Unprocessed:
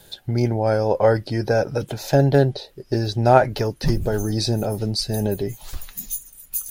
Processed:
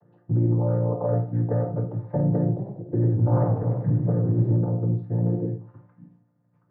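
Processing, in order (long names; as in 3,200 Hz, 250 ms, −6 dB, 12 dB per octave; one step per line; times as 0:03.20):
channel vocoder with a chord as carrier major triad, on A#2
low-pass filter 1,300 Hz 24 dB per octave
brickwall limiter −13.5 dBFS, peak gain reduction 9 dB
convolution reverb RT60 0.40 s, pre-delay 15 ms, DRR 2 dB
0:02.48–0:04.54: feedback echo with a swinging delay time 99 ms, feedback 56%, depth 208 cents, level −7 dB
level −2 dB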